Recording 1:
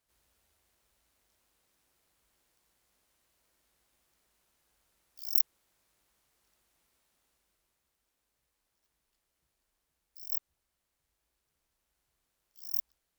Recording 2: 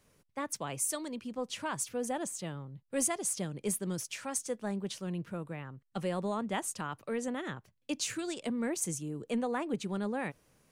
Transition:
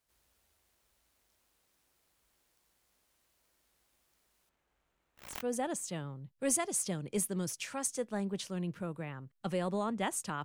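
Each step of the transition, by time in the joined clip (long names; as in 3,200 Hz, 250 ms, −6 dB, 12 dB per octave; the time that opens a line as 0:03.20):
recording 1
0:04.49–0:05.47: running median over 9 samples
0:05.37: continue with recording 2 from 0:01.88, crossfade 0.20 s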